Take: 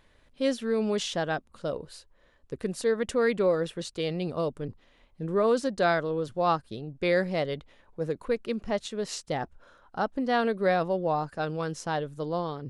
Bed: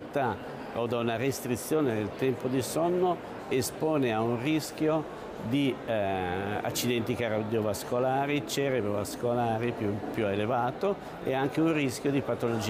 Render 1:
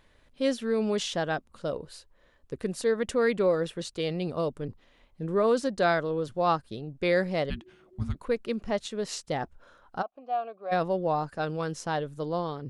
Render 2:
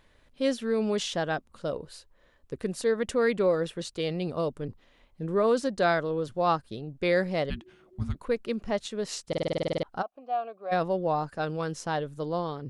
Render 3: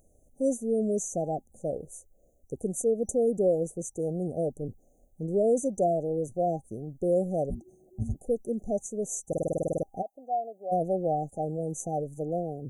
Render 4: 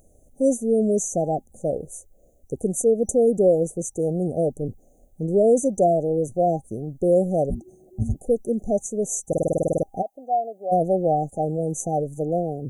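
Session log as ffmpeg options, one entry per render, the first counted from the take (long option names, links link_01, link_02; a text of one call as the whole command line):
ffmpeg -i in.wav -filter_complex "[0:a]asplit=3[link_01][link_02][link_03];[link_01]afade=type=out:start_time=7.49:duration=0.02[link_04];[link_02]afreqshift=-380,afade=type=in:start_time=7.49:duration=0.02,afade=type=out:start_time=8.14:duration=0.02[link_05];[link_03]afade=type=in:start_time=8.14:duration=0.02[link_06];[link_04][link_05][link_06]amix=inputs=3:normalize=0,asplit=3[link_07][link_08][link_09];[link_07]afade=type=out:start_time=10.01:duration=0.02[link_10];[link_08]asplit=3[link_11][link_12][link_13];[link_11]bandpass=frequency=730:width_type=q:width=8,volume=0dB[link_14];[link_12]bandpass=frequency=1090:width_type=q:width=8,volume=-6dB[link_15];[link_13]bandpass=frequency=2440:width_type=q:width=8,volume=-9dB[link_16];[link_14][link_15][link_16]amix=inputs=3:normalize=0,afade=type=in:start_time=10.01:duration=0.02,afade=type=out:start_time=10.71:duration=0.02[link_17];[link_09]afade=type=in:start_time=10.71:duration=0.02[link_18];[link_10][link_17][link_18]amix=inputs=3:normalize=0" out.wav
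ffmpeg -i in.wav -filter_complex "[0:a]asplit=12[link_01][link_02][link_03][link_04][link_05][link_06][link_07][link_08][link_09][link_10][link_11][link_12];[link_01]atrim=end=9.332[link_13];[link_02]atrim=start=9.278:end=9.332[link_14];[link_03]atrim=start=9.278:end=9.332[link_15];[link_04]atrim=start=9.278:end=9.332[link_16];[link_05]atrim=start=9.278:end=9.332[link_17];[link_06]atrim=start=9.278:end=9.332[link_18];[link_07]atrim=start=9.278:end=9.332[link_19];[link_08]atrim=start=9.278:end=9.332[link_20];[link_09]atrim=start=9.278:end=9.332[link_21];[link_10]atrim=start=9.278:end=9.332[link_22];[link_11]atrim=start=9.278:end=9.332[link_23];[link_12]atrim=start=9.828[link_24];[link_13][link_14]acrossfade=duration=0.004:curve1=hsin:curve2=hsin[link_25];[link_25][link_15]acrossfade=duration=0.004:curve1=hsin:curve2=hsin[link_26];[link_26][link_16]acrossfade=duration=0.004:curve1=hsin:curve2=hsin[link_27];[link_27][link_17]acrossfade=duration=0.004:curve1=hsin:curve2=hsin[link_28];[link_28][link_18]acrossfade=duration=0.004:curve1=hsin:curve2=hsin[link_29];[link_29][link_19]acrossfade=duration=0.004:curve1=hsin:curve2=hsin[link_30];[link_30][link_20]acrossfade=duration=0.004:curve1=hsin:curve2=hsin[link_31];[link_31][link_21]acrossfade=duration=0.004:curve1=hsin:curve2=hsin[link_32];[link_32][link_22]acrossfade=duration=0.004:curve1=hsin:curve2=hsin[link_33];[link_33][link_23]acrossfade=duration=0.004:curve1=hsin:curve2=hsin[link_34];[link_34][link_24]acrossfade=duration=0.004:curve1=hsin:curve2=hsin" out.wav
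ffmpeg -i in.wav -af "afftfilt=real='re*(1-between(b*sr/4096,800,5900))':imag='im*(1-between(b*sr/4096,800,5900))':win_size=4096:overlap=0.75,highshelf=frequency=6200:gain=11" out.wav
ffmpeg -i in.wav -af "volume=7dB" out.wav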